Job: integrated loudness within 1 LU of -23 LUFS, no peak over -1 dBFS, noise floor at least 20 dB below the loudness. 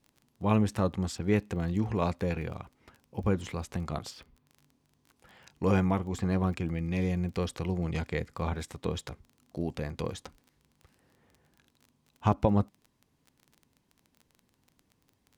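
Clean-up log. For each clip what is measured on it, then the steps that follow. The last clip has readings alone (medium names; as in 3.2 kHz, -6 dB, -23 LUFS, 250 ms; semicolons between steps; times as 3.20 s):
tick rate 23 per s; loudness -31.5 LUFS; peak level -12.5 dBFS; loudness target -23.0 LUFS
-> de-click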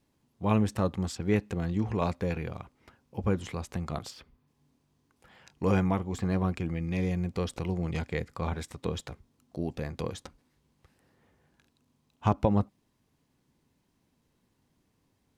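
tick rate 0.20 per s; loudness -31.5 LUFS; peak level -12.5 dBFS; loudness target -23.0 LUFS
-> trim +8.5 dB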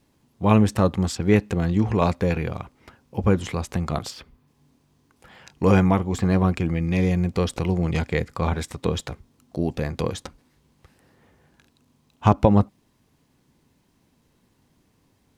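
loudness -23.0 LUFS; peak level -4.0 dBFS; noise floor -65 dBFS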